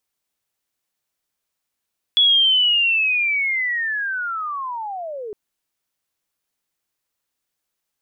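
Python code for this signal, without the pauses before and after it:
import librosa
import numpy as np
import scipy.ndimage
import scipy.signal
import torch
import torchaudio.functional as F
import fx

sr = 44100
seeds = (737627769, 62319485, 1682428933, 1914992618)

y = fx.chirp(sr, length_s=3.16, from_hz=3400.0, to_hz=400.0, law='linear', from_db=-11.0, to_db=-28.0)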